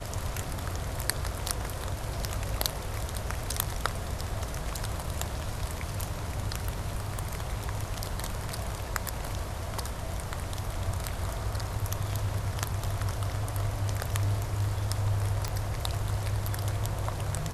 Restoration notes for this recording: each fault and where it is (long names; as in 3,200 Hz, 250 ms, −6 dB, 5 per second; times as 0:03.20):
0:06.66–0:07.84: clipping −24.5 dBFS
0:15.48: click −17 dBFS